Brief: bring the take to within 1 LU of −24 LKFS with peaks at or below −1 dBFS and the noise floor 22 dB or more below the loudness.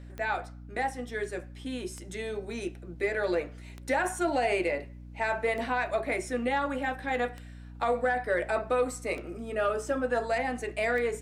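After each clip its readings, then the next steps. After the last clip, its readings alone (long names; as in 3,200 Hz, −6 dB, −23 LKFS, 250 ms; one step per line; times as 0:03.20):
number of clicks 7; mains hum 60 Hz; hum harmonics up to 300 Hz; level of the hum −43 dBFS; integrated loudness −31.0 LKFS; sample peak −17.5 dBFS; target loudness −24.0 LKFS
→ click removal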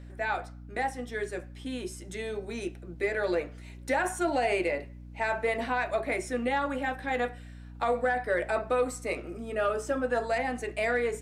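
number of clicks 0; mains hum 60 Hz; hum harmonics up to 300 Hz; level of the hum −43 dBFS
→ mains-hum notches 60/120/180/240/300 Hz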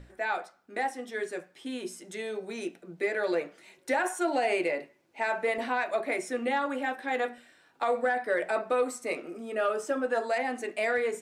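mains hum none found; integrated loudness −31.0 LKFS; sample peak −17.5 dBFS; target loudness −24.0 LKFS
→ level +7 dB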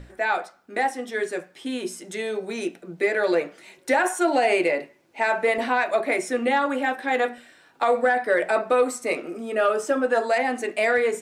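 integrated loudness −24.0 LKFS; sample peak −10.5 dBFS; background noise floor −57 dBFS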